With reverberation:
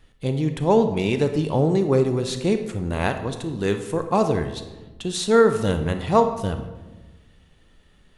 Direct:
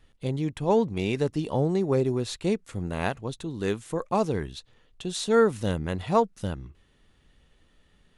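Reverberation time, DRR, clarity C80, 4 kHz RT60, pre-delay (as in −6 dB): 1.2 s, 7.5 dB, 11.0 dB, 0.75 s, 27 ms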